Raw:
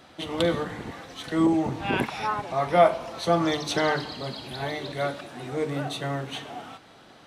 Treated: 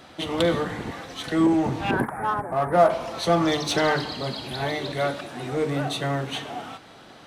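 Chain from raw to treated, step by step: 1.91–2.90 s: elliptic band-stop 1.7–9.1 kHz, stop band 40 dB; in parallel at -4 dB: overload inside the chain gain 27 dB

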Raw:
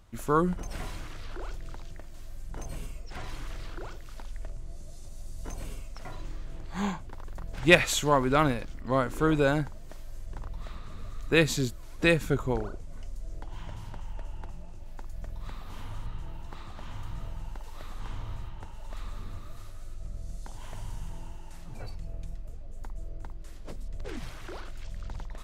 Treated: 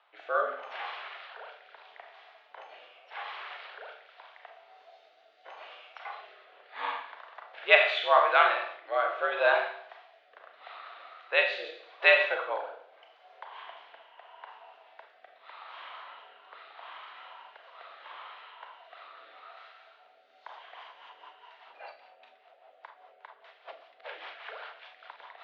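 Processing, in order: Schroeder reverb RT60 0.65 s, combs from 29 ms, DRR 2.5 dB; rotary cabinet horn 0.8 Hz, later 5 Hz, at 20.12 s; mistuned SSB +80 Hz 570–3500 Hz; trim +5.5 dB

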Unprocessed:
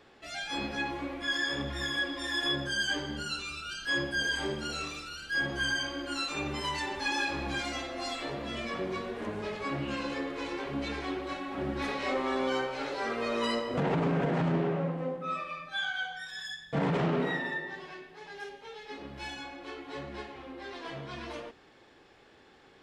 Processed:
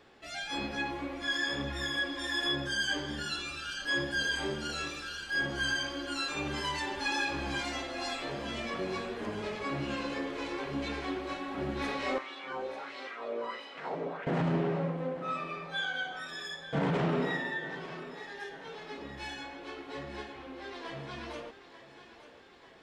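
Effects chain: 12.18–14.27 s: wah-wah 1.5 Hz 480–3400 Hz, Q 2.1; thinning echo 892 ms, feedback 61%, high-pass 270 Hz, level -13 dB; trim -1 dB

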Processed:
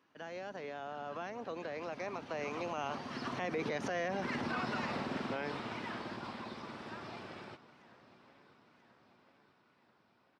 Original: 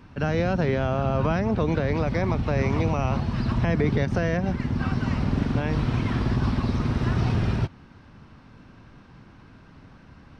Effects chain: Doppler pass-by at 4.30 s, 24 m/s, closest 9.4 m; high-pass 400 Hz 12 dB/octave; peak limiter -31.5 dBFS, peak gain reduction 11.5 dB; on a send: feedback delay 987 ms, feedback 56%, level -19.5 dB; on the sum: trim +4 dB

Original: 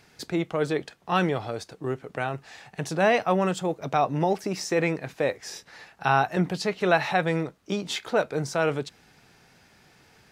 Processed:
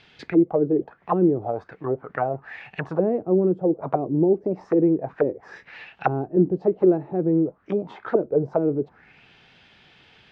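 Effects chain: touch-sensitive low-pass 350–3400 Hz down, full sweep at -22 dBFS

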